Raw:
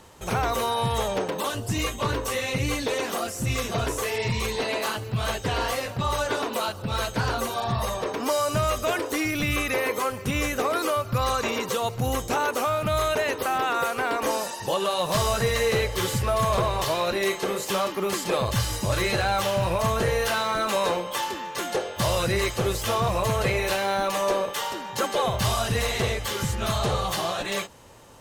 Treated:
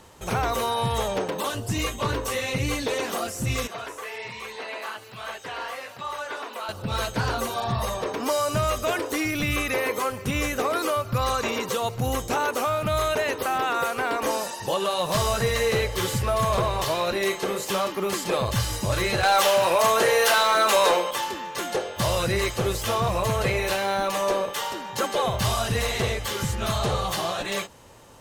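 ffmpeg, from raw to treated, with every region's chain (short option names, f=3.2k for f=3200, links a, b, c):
-filter_complex "[0:a]asettb=1/sr,asplit=3[a][b][c];[a]atrim=end=3.674[d];[b]atrim=start=3.67:end=6.69,asetpts=PTS-STARTPTS,afade=t=in:d=0.004:c=qsin,afade=t=out:st=3.016:d=0.004:c=qsin,highpass=f=1.4k:p=1,acrossover=split=2500[e][f];[f]acompressor=threshold=-46dB:ratio=4:attack=1:release=60[g];[e][g]amix=inputs=2:normalize=0[h];[c]atrim=start=6.686[i];[d][h]acrossfade=d=0.004:c1=hsin:c2=qsin[j];[j][i]acrossfade=d=0.004:c1=qsin:c2=hsin,asettb=1/sr,asplit=3[k][l][m];[k]atrim=end=19.234[n];[l]atrim=start=19.23:end=21.11,asetpts=PTS-STARTPTS,afade=t=in:d=0.004:c=qsin,afade=t=out:st=1.876:d=0.004:c=qsin,highpass=390,highshelf=f=6.4k:g=2.5,aeval=exprs='0.251*sin(PI/2*1.41*val(0)/0.251)':c=same[o];[m]atrim=start=21.106[p];[n][o]acrossfade=d=0.004:c1=hsin:c2=qsin[q];[q][p]acrossfade=d=0.004:c1=qsin:c2=hsin"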